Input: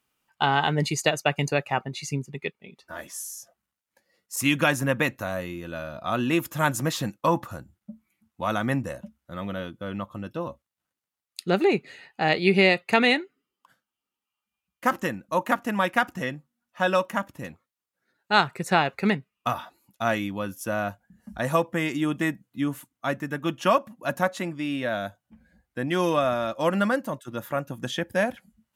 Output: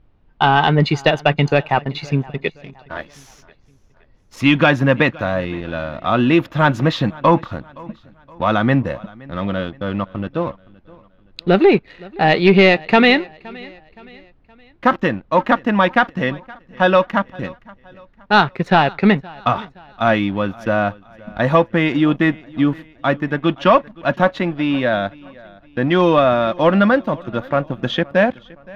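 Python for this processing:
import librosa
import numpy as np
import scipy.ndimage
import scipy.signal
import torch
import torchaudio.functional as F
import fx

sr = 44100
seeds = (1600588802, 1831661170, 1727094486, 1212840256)

p1 = fx.peak_eq(x, sr, hz=3700.0, db=5.0, octaves=0.57)
p2 = fx.leveller(p1, sr, passes=2)
p3 = fx.dmg_noise_colour(p2, sr, seeds[0], colour='brown', level_db=-57.0)
p4 = fx.air_absorb(p3, sr, metres=280.0)
p5 = p4 + fx.echo_feedback(p4, sr, ms=519, feedback_pct=43, wet_db=-23.0, dry=0)
y = p5 * librosa.db_to_amplitude(3.5)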